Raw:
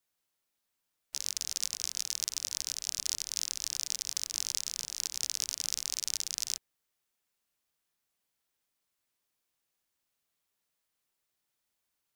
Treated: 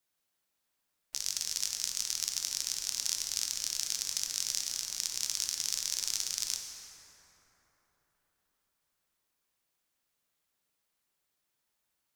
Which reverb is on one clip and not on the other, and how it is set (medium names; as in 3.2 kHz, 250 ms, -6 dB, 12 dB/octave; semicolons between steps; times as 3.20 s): plate-style reverb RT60 4.4 s, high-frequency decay 0.4×, DRR 2 dB